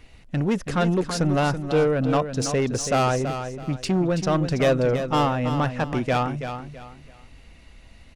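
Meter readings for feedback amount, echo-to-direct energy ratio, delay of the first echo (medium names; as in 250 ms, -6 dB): 29%, -8.5 dB, 329 ms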